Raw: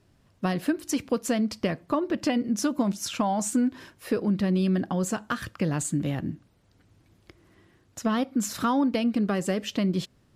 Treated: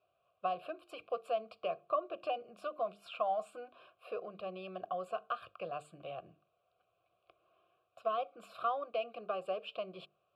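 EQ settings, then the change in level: vowel filter a; notches 50/100/150/200/250/300/350/400/450 Hz; fixed phaser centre 1300 Hz, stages 8; +5.0 dB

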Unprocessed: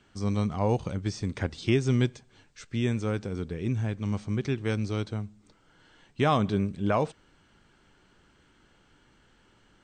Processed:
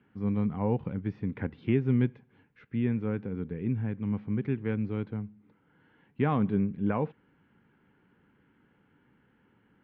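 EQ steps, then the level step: speaker cabinet 180–2500 Hz, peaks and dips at 350 Hz -6 dB, 630 Hz -9 dB, 1200 Hz -5 dB; tilt -2.5 dB/oct; bell 690 Hz -2 dB; -2.0 dB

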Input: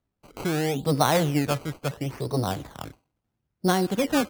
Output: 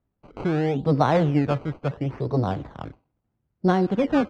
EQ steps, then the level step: tape spacing loss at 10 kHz 33 dB; +4.0 dB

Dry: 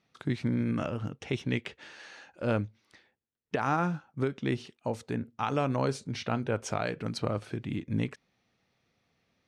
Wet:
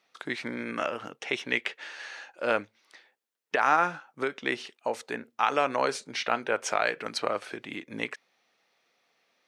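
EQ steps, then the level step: HPF 500 Hz 12 dB/oct; dynamic EQ 1900 Hz, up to +5 dB, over -51 dBFS, Q 1.4; +5.5 dB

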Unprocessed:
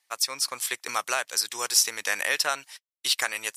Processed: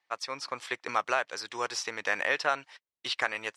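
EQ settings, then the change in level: tape spacing loss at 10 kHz 31 dB; +4.0 dB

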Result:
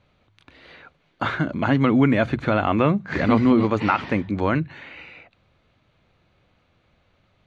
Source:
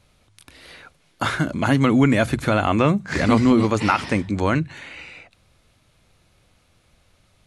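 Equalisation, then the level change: air absorption 220 m; low shelf 66 Hz -9.5 dB; notch 5200 Hz, Q 9; 0.0 dB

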